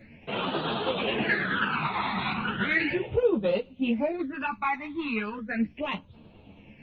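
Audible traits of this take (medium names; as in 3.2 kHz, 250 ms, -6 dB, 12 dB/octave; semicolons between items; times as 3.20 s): phasing stages 12, 0.36 Hz, lowest notch 500–1900 Hz; tremolo saw down 9.3 Hz, depth 40%; a shimmering, thickened sound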